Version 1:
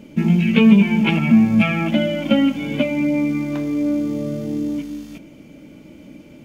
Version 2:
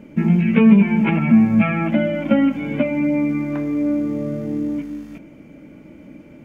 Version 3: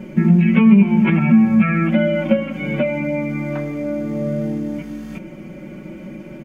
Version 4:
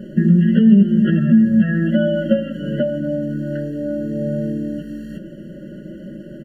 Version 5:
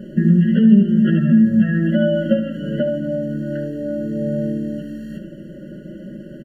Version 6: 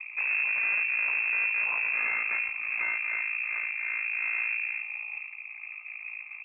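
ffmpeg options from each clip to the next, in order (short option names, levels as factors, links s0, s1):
-filter_complex "[0:a]acrossover=split=3000[s0][s1];[s1]acompressor=threshold=0.00708:ratio=4:attack=1:release=60[s2];[s0][s2]amix=inputs=2:normalize=0,highshelf=f=2600:t=q:w=1.5:g=-8"
-af "acompressor=threshold=0.0158:ratio=1.5,aecho=1:1:5.4:0.96,volume=2"
-af "afftfilt=real='re*eq(mod(floor(b*sr/1024/670),2),0)':imag='im*eq(mod(floor(b*sr/1024/670),2),0)':win_size=1024:overlap=0.75"
-af "aecho=1:1:73:0.299,volume=0.891"
-af "aeval=exprs='val(0)*sin(2*PI*28*n/s)':c=same,aeval=exprs='(tanh(22.4*val(0)+0.75)-tanh(0.75))/22.4':c=same,lowpass=f=2300:t=q:w=0.5098,lowpass=f=2300:t=q:w=0.6013,lowpass=f=2300:t=q:w=0.9,lowpass=f=2300:t=q:w=2.563,afreqshift=-2700"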